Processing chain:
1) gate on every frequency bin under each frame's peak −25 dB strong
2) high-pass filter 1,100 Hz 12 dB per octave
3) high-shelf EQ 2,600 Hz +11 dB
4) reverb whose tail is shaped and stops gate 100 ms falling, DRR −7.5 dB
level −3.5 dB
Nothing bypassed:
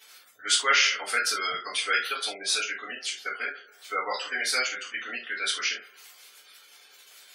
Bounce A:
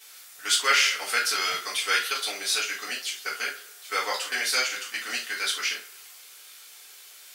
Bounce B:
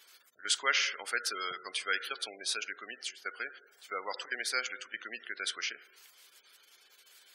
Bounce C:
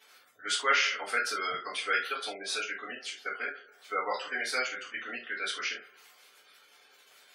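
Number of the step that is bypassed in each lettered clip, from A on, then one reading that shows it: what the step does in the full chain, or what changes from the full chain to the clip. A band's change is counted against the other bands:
1, 8 kHz band +1.5 dB
4, change in crest factor +2.5 dB
3, 8 kHz band −7.5 dB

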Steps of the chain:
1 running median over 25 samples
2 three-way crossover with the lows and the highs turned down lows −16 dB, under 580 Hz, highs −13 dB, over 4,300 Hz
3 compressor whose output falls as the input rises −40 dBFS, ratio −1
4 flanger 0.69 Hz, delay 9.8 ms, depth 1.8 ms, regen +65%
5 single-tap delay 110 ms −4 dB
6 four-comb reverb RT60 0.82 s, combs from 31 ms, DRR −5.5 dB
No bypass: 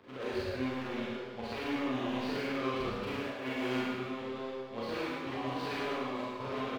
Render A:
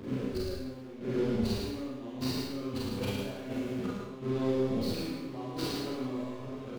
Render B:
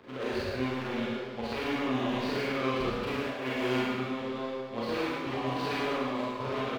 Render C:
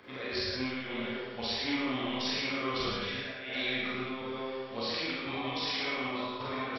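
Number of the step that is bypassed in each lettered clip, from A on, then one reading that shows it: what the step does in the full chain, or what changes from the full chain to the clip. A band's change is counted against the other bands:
2, 2 kHz band −10.0 dB
4, change in integrated loudness +4.0 LU
1, 4 kHz band +10.0 dB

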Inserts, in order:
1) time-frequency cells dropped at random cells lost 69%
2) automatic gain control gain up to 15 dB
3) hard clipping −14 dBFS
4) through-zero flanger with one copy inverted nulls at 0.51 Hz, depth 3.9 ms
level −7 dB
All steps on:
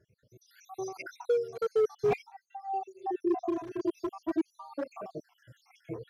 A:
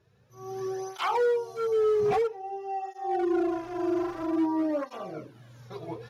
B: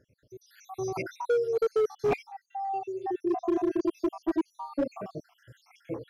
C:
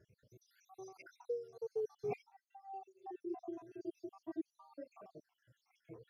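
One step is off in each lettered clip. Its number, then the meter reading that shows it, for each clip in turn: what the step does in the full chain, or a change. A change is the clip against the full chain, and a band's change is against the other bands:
1, 125 Hz band −2.5 dB
4, change in crest factor −3.0 dB
2, change in crest factor +5.0 dB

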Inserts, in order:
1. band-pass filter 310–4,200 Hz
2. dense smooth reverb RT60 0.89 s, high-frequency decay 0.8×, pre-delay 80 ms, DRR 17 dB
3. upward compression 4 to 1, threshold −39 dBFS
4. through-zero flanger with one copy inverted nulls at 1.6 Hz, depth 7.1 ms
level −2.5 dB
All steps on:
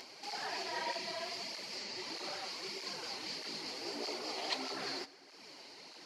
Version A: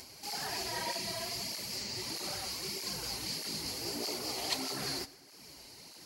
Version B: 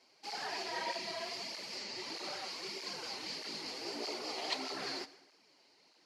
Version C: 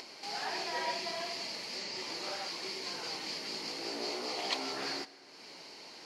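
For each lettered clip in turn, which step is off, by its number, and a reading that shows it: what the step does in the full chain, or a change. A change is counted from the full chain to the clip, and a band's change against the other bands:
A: 1, 125 Hz band +11.5 dB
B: 3, change in momentary loudness spread −9 LU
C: 4, change in integrated loudness +3.0 LU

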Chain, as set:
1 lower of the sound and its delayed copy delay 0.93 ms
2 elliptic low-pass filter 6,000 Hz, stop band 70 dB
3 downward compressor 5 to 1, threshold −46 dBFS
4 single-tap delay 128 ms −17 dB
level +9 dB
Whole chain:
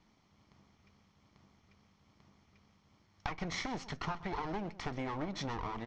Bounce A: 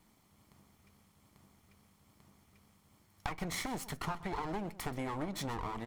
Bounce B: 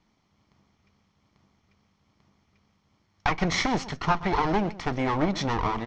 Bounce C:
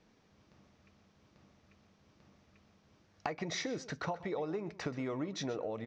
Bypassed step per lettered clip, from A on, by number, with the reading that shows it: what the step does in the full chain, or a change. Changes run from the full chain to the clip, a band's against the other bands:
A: 2, 8 kHz band +5.5 dB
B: 3, average gain reduction 12.0 dB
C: 1, 500 Hz band +6.0 dB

